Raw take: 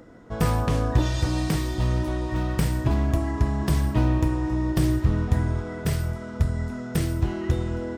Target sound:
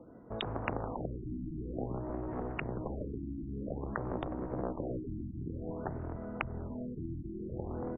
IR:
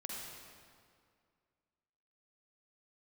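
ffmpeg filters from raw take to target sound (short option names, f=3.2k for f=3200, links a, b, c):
-filter_complex "[0:a]acompressor=threshold=-24dB:ratio=8,asplit=2[a][b];[b]asplit=7[c][d][e][f][g][h][i];[c]adelay=148,afreqshift=-69,volume=-12.5dB[j];[d]adelay=296,afreqshift=-138,volume=-17.1dB[k];[e]adelay=444,afreqshift=-207,volume=-21.7dB[l];[f]adelay=592,afreqshift=-276,volume=-26.2dB[m];[g]adelay=740,afreqshift=-345,volume=-30.8dB[n];[h]adelay=888,afreqshift=-414,volume=-35.4dB[o];[i]adelay=1036,afreqshift=-483,volume=-40dB[p];[j][k][l][m][n][o][p]amix=inputs=7:normalize=0[q];[a][q]amix=inputs=2:normalize=0,aeval=exprs='0.211*(cos(1*acos(clip(val(0)/0.211,-1,1)))-cos(1*PI/2))+0.106*(cos(3*acos(clip(val(0)/0.211,-1,1)))-cos(3*PI/2))+0.00299*(cos(4*acos(clip(val(0)/0.211,-1,1)))-cos(4*PI/2))+0.0168*(cos(5*acos(clip(val(0)/0.211,-1,1)))-cos(5*PI/2))':c=same,lowshelf=f=62:g=-9.5,asplit=2[r][s];[s]adelay=641.4,volume=-19dB,highshelf=f=4k:g=-14.4[t];[r][t]amix=inputs=2:normalize=0,afftfilt=real='re*lt(hypot(re,im),0.0251)':imag='im*lt(hypot(re,im),0.0251)':win_size=1024:overlap=0.75,acrossover=split=210|1300[u][v][w];[w]acrusher=bits=5:mix=0:aa=0.000001[x];[u][v][x]amix=inputs=3:normalize=0,afftfilt=real='re*lt(b*sr/1024,340*pow(3800/340,0.5+0.5*sin(2*PI*0.52*pts/sr)))':imag='im*lt(b*sr/1024,340*pow(3800/340,0.5+0.5*sin(2*PI*0.52*pts/sr)))':win_size=1024:overlap=0.75,volume=15dB"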